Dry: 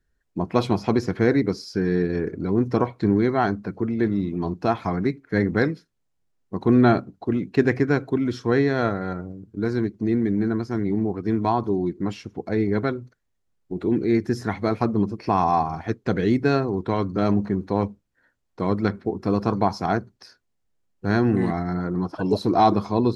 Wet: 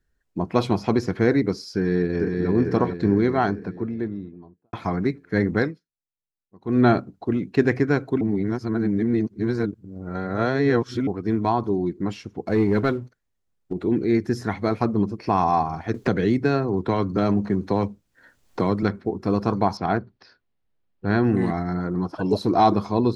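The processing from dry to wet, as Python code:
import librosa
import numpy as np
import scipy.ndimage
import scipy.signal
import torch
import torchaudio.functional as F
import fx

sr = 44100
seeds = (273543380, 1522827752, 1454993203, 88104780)

y = fx.echo_throw(x, sr, start_s=1.74, length_s=0.74, ms=450, feedback_pct=55, wet_db=-4.0)
y = fx.studio_fade_out(y, sr, start_s=3.37, length_s=1.36)
y = fx.leveller(y, sr, passes=1, at=(12.47, 13.73))
y = fx.band_squash(y, sr, depth_pct=70, at=(15.94, 18.83))
y = fx.lowpass(y, sr, hz=4200.0, slope=24, at=(19.77, 21.24))
y = fx.edit(y, sr, fx.fade_down_up(start_s=5.58, length_s=1.26, db=-21.5, fade_s=0.22),
    fx.reverse_span(start_s=8.21, length_s=2.86), tone=tone)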